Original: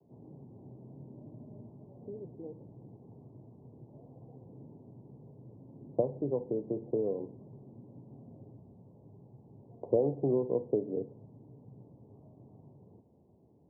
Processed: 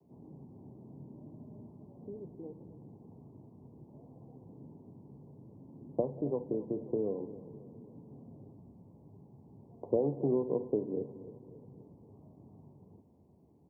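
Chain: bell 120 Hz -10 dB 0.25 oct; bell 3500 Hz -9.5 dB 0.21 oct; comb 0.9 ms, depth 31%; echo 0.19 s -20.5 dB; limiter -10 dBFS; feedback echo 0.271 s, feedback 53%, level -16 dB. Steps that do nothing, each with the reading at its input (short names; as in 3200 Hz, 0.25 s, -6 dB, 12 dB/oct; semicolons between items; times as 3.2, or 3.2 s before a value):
bell 3500 Hz: input band ends at 910 Hz; limiter -10 dBFS: input peak -15.5 dBFS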